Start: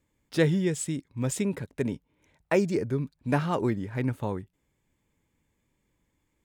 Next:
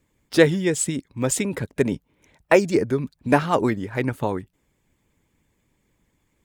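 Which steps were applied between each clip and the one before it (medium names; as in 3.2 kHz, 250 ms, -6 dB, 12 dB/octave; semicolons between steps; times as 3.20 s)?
harmonic-percussive split percussive +9 dB; trim +1 dB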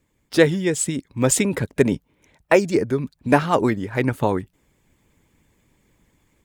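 level rider gain up to 6 dB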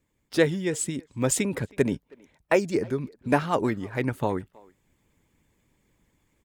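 speakerphone echo 320 ms, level -24 dB; trim -6 dB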